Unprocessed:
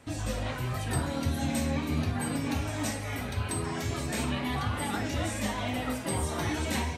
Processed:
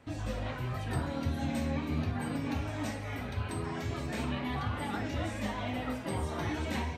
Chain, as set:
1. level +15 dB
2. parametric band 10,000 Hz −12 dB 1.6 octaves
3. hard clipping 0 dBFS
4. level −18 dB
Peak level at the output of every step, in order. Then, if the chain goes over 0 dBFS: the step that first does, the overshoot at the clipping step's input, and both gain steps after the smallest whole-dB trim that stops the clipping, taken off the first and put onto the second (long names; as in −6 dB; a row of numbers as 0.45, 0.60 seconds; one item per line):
−2.0, −2.5, −2.5, −20.5 dBFS
no step passes full scale